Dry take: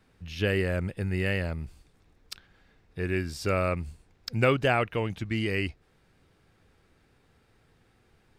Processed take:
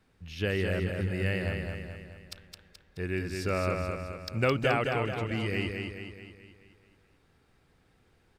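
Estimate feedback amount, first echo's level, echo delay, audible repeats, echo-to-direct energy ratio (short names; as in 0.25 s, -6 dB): 51%, -4.5 dB, 0.214 s, 6, -3.0 dB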